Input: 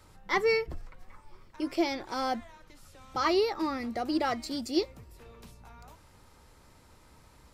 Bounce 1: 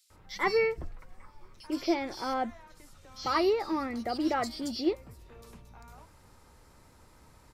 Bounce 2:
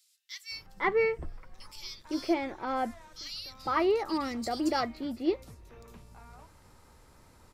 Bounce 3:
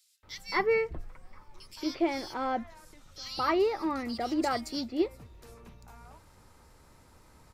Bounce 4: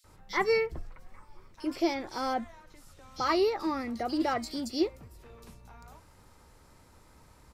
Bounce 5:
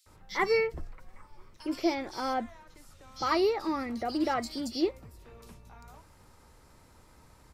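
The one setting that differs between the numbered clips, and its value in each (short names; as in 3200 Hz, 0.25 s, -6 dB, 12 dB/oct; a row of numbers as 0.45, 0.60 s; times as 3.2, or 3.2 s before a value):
bands offset in time, time: 100, 510, 230, 40, 60 ms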